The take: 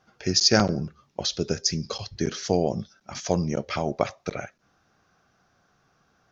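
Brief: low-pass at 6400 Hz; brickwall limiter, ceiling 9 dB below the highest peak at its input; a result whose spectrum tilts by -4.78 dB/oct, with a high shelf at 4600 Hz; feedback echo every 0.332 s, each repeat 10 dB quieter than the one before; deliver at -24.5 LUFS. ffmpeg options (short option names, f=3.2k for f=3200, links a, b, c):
-af "lowpass=6.4k,highshelf=f=4.6k:g=-6.5,alimiter=limit=-14dB:level=0:latency=1,aecho=1:1:332|664|996|1328:0.316|0.101|0.0324|0.0104,volume=5dB"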